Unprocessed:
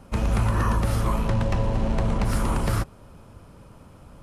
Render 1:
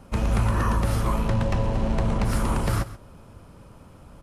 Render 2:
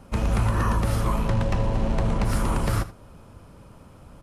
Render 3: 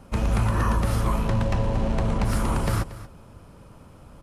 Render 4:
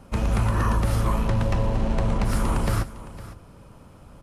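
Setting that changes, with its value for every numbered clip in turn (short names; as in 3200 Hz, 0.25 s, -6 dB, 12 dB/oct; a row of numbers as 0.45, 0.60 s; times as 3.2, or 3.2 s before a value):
echo, time: 132, 79, 232, 508 ms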